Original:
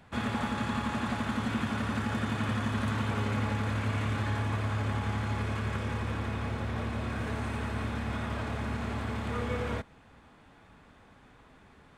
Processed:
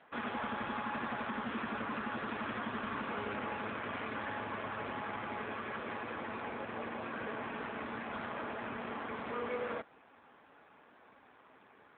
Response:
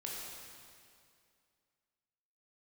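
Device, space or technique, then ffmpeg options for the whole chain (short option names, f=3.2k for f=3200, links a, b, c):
telephone: -filter_complex "[0:a]asettb=1/sr,asplit=3[a][b][c];[a]atrim=end=7.644[d];[b]atrim=start=7.64:end=9.19,asetpts=PTS-STARTPTS,afade=t=in:d=0.004:c=qsin,afade=t=out:st=1.546:d=0.004:c=qsin,highpass=f=74:w=0.5412,highpass=f=74:w=1.3066[e];[c]atrim=start=9.186[f];[d][e]acrossfade=d=0.004:c1=hsin:c2=qsin[g];[g][f]acrossfade=d=0.004:c1=qsin:c2=hsin,highpass=330,lowpass=3.1k,asoftclip=type=tanh:threshold=-29dB,volume=1.5dB" -ar 8000 -c:a libopencore_amrnb -b:a 7400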